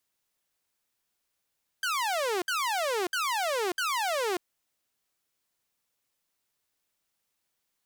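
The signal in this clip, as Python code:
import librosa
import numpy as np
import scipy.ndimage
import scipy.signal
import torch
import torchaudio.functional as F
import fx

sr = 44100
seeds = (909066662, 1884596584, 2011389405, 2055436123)

y = fx.laser_zaps(sr, level_db=-24, start_hz=1600.0, end_hz=340.0, length_s=0.59, wave='saw', shots=4, gap_s=0.06)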